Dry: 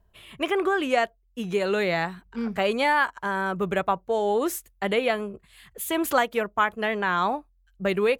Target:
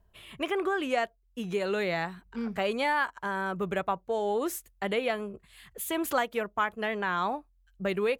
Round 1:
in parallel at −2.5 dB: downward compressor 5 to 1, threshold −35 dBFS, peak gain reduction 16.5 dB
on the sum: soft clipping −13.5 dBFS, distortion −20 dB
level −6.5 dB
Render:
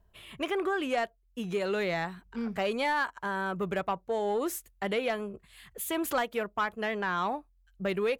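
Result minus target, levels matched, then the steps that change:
soft clipping: distortion +19 dB
change: soft clipping −2.5 dBFS, distortion −38 dB

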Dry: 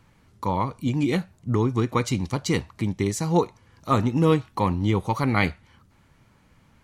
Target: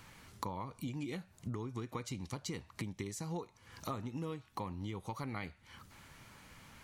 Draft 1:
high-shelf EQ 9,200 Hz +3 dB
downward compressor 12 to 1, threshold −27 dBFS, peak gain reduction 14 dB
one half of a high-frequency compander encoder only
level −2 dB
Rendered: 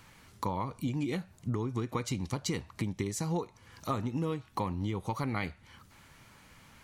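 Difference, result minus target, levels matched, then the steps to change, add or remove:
downward compressor: peak gain reduction −8 dB
change: downward compressor 12 to 1, threshold −36 dBFS, peak gain reduction 22 dB

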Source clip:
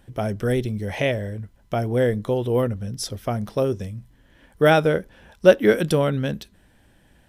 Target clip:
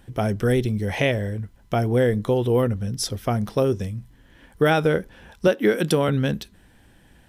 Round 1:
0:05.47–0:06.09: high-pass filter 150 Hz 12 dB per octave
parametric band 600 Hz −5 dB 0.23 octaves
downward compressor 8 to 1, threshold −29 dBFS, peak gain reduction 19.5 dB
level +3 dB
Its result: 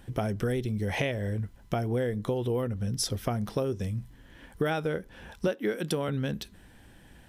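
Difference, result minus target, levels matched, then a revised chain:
downward compressor: peak gain reduction +10.5 dB
0:05.47–0:06.09: high-pass filter 150 Hz 12 dB per octave
parametric band 600 Hz −5 dB 0.23 octaves
downward compressor 8 to 1, threshold −17 dBFS, peak gain reduction 9 dB
level +3 dB

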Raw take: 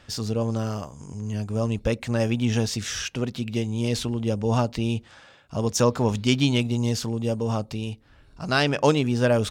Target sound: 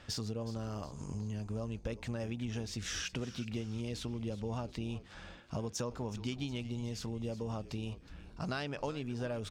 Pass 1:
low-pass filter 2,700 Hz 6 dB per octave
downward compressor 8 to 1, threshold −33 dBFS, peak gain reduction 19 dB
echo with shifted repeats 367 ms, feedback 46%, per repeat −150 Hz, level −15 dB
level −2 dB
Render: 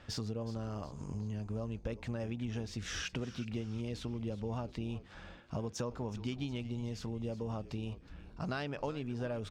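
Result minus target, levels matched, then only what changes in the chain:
8,000 Hz band −4.0 dB
change: low-pass filter 7,800 Hz 6 dB per octave

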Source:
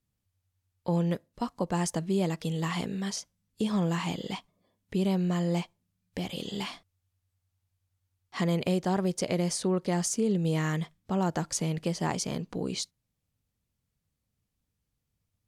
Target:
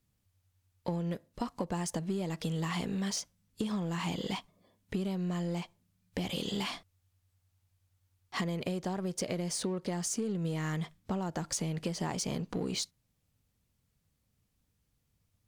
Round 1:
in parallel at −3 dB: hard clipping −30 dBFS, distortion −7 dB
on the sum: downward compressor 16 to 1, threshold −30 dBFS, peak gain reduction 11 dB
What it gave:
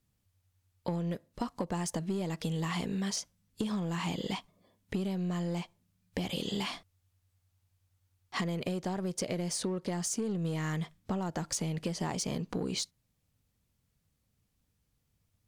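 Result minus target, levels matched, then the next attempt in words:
hard clipping: distortion −4 dB
in parallel at −3 dB: hard clipping −39.5 dBFS, distortion −3 dB
on the sum: downward compressor 16 to 1, threshold −30 dBFS, peak gain reduction 10 dB

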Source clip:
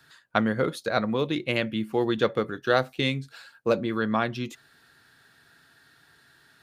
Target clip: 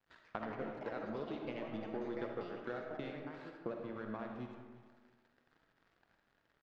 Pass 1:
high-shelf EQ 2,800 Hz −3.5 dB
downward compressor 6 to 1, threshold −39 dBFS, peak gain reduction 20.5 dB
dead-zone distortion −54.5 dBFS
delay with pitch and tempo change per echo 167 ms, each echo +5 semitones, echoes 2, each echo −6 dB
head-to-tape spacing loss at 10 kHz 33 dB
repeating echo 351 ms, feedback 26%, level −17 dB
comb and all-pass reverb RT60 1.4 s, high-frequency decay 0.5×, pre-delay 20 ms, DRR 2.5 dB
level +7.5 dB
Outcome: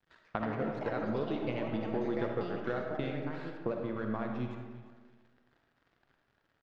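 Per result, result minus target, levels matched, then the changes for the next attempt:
downward compressor: peak gain reduction −6 dB; 125 Hz band +4.0 dB
change: downward compressor 6 to 1, threshold −46.5 dBFS, peak gain reduction 27 dB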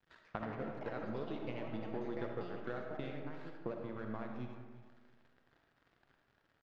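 125 Hz band +4.5 dB
add first: high-pass filter 160 Hz 12 dB per octave

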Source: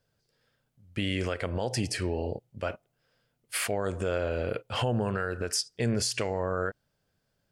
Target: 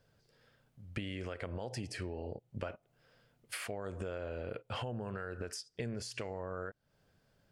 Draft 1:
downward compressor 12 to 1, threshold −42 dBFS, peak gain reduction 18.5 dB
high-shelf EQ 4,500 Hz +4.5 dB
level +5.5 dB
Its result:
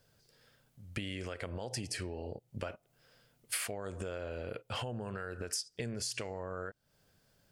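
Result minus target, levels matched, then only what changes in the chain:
8,000 Hz band +7.0 dB
change: high-shelf EQ 4,500 Hz −7 dB

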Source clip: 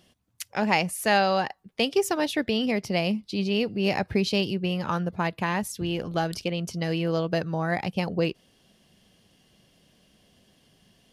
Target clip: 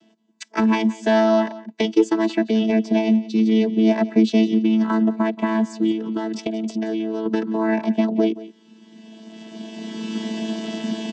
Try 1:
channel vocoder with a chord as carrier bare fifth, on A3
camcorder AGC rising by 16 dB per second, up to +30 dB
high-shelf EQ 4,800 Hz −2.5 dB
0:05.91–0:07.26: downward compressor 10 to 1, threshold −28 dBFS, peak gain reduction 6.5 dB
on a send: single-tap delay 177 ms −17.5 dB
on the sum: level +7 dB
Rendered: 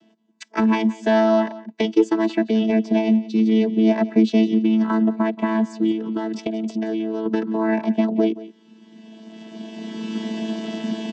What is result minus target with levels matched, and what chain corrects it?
8,000 Hz band −4.5 dB
channel vocoder with a chord as carrier bare fifth, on A3
camcorder AGC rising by 16 dB per second, up to +30 dB
high-shelf EQ 4,800 Hz +4.5 dB
0:05.91–0:07.26: downward compressor 10 to 1, threshold −28 dBFS, peak gain reduction 6.5 dB
on a send: single-tap delay 177 ms −17.5 dB
on the sum: level +7 dB

